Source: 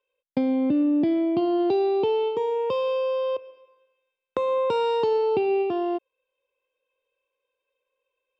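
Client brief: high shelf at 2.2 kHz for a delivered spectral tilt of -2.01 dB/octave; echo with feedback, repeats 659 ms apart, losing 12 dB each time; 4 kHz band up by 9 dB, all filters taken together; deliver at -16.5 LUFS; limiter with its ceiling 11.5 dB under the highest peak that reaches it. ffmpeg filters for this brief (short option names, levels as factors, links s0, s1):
-af "highshelf=f=2200:g=8,equalizer=f=4000:t=o:g=4.5,alimiter=limit=0.106:level=0:latency=1,aecho=1:1:659|1318|1977:0.251|0.0628|0.0157,volume=2.99"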